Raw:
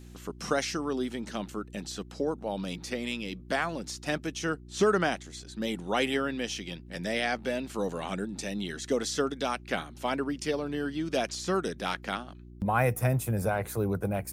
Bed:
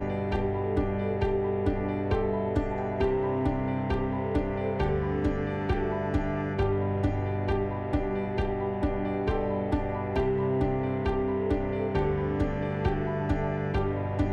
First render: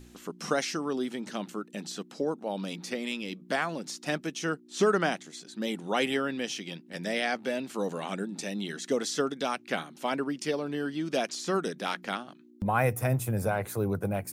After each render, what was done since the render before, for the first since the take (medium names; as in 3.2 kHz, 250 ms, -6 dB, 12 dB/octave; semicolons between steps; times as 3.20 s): de-hum 60 Hz, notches 3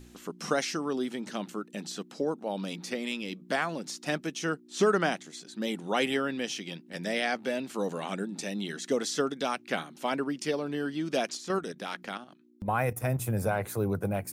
11.37–13.19 s: level held to a coarse grid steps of 9 dB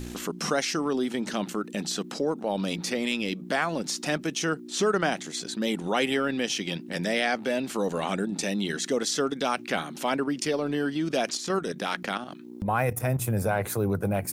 transient shaper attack -2 dB, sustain -7 dB; level flattener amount 50%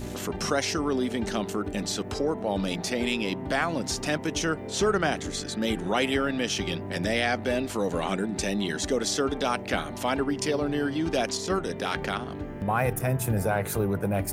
add bed -9 dB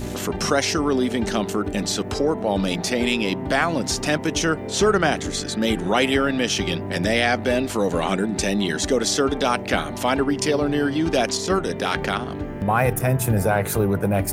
trim +6 dB